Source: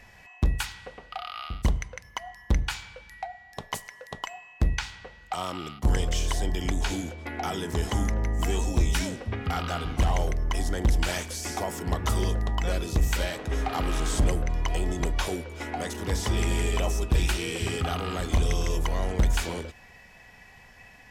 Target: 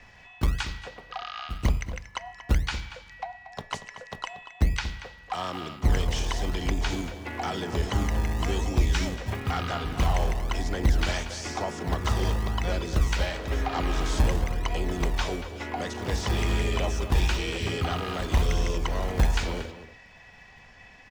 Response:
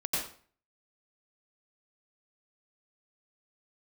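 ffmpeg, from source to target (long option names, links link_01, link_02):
-filter_complex "[0:a]lowpass=frequency=6400:width=0.5412,lowpass=frequency=6400:width=1.3066,acrossover=split=250|470|3500[link_01][link_02][link_03][link_04];[link_01]acrusher=samples=35:mix=1:aa=0.000001:lfo=1:lforange=35:lforate=1[link_05];[link_05][link_02][link_03][link_04]amix=inputs=4:normalize=0,asplit=2[link_06][link_07];[link_07]asetrate=58866,aresample=44100,atempo=0.749154,volume=-12dB[link_08];[link_06][link_08]amix=inputs=2:normalize=0,asplit=2[link_09][link_10];[link_10]adelay=233.2,volume=-12dB,highshelf=frequency=4000:gain=-5.25[link_11];[link_09][link_11]amix=inputs=2:normalize=0"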